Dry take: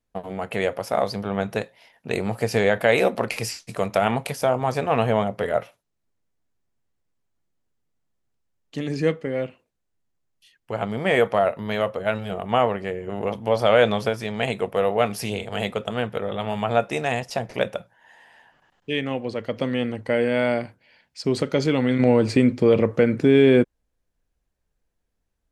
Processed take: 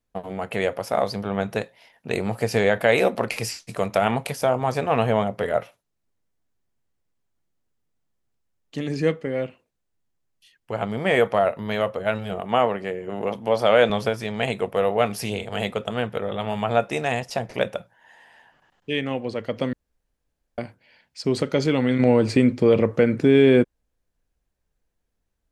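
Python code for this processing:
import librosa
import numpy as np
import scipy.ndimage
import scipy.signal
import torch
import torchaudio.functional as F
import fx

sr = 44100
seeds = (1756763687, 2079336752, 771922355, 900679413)

y = fx.highpass(x, sr, hz=140.0, slope=12, at=(12.41, 13.9))
y = fx.edit(y, sr, fx.room_tone_fill(start_s=19.73, length_s=0.85), tone=tone)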